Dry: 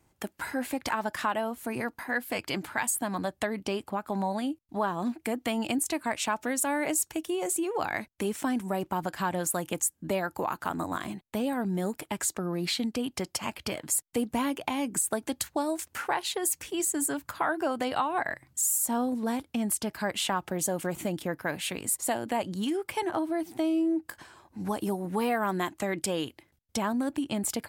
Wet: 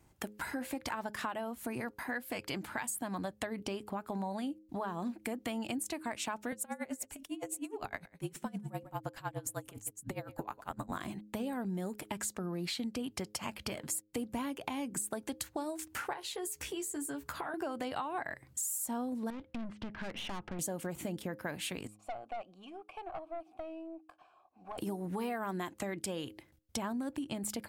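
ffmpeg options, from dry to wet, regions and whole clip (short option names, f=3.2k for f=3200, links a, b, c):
-filter_complex "[0:a]asettb=1/sr,asplit=3[a][b][c];[a]atrim=end=6.524[d];[b]atrim=start=6.52:end=10.92,asetpts=PTS-STARTPTS,afade=t=in:d=0.004:c=qsin,afade=t=out:st=4.396:d=0.004:c=qsin,afreqshift=-45,aecho=1:1:143:0.119,atrim=end_sample=194040,aeval=exprs='val(0)*pow(10,-26*(0.5-0.5*cos(2*PI*9.8*n/s))/20)':c=same[e];[c]atrim=start=10.916[f];[d][e]acrossfade=d=0.004:c1=hsin:c2=qsin[g];[g][f]acrossfade=d=0.004:c1=qsin:c2=hsin,asettb=1/sr,asplit=3[h][i][j];[h]atrim=end=16.134[k];[i]atrim=start=16.13:end=17.54,asetpts=PTS-STARTPTS,afade=t=in:d=0.004:c=qsin,afade=t=out:st=1.406:d=0.004:c=qsin,asplit=2[l][m];[m]adelay=14,volume=-4.5dB[n];[l][n]amix=inputs=2:normalize=0,atrim=end_sample=62181,acompressor=threshold=-34dB:ratio=3:attack=3.2:release=140:knee=1:detection=peak[o];[j]atrim=start=17.536[p];[k][o]acrossfade=d=0.004:c1=hsin:c2=qsin[q];[q][p]acrossfade=d=0.004:c1=qsin:c2=hsin,asettb=1/sr,asplit=3[r][s][t];[r]atrim=end=19.304[u];[s]atrim=start=19.3:end=20.59,asetpts=PTS-STARTPTS,afade=t=in:d=0.004:c=qsin,afade=t=out:st=1.286:d=0.004:c=qsin,lowpass=f=3k:w=0.5412,lowpass=f=3k:w=1.3066,aeval=exprs='(tanh(56.2*val(0)+0.5)-tanh(0.5))/56.2':c=same[v];[t]atrim=start=20.586[w];[u][v]acrossfade=d=0.004:c1=hsin:c2=qsin[x];[x][w]acrossfade=d=0.004:c1=qsin:c2=hsin,asettb=1/sr,asplit=3[y][z][aa];[y]atrim=end=21.874[ab];[z]atrim=start=21.87:end=24.78,asetpts=PTS-STARTPTS,afade=t=in:d=0.004:c=qsin,afade=t=out:st=2.906:d=0.004:c=qsin,asplit=3[ac][ad][ae];[ac]bandpass=f=730:t=q:w=8,volume=0dB[af];[ad]bandpass=f=1.09k:t=q:w=8,volume=-6dB[ag];[ae]bandpass=f=2.44k:t=q:w=8,volume=-9dB[ah];[af][ag][ah]amix=inputs=3:normalize=0,aeval=exprs='(tanh(44.7*val(0)+0.35)-tanh(0.35))/44.7':c=same[ai];[aa]atrim=start=24.776[aj];[ab][ai]acrossfade=d=0.004:c1=hsin:c2=qsin[ak];[ak][aj]acrossfade=d=0.004:c1=qsin:c2=hsin,lowshelf=f=180:g=4.5,acompressor=threshold=-37dB:ratio=3,bandreject=f=104.8:t=h:w=4,bandreject=f=209.6:t=h:w=4,bandreject=f=314.4:t=h:w=4,bandreject=f=419.2:t=h:w=4,bandreject=f=524:t=h:w=4"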